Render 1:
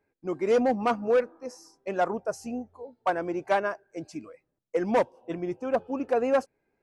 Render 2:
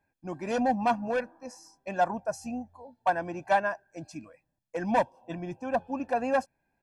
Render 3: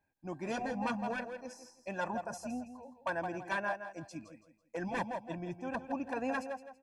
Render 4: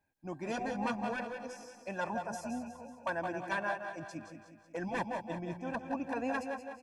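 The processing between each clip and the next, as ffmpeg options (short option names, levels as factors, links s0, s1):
-af "aecho=1:1:1.2:0.74,volume=0.794"
-af "aecho=1:1:165|330|495:0.282|0.0846|0.0254,afftfilt=real='re*lt(hypot(re,im),0.398)':imag='im*lt(hypot(re,im),0.398)':win_size=1024:overlap=0.75,volume=0.596"
-af "aecho=1:1:183|366|549|732|915|1098:0.335|0.174|0.0906|0.0471|0.0245|0.0127"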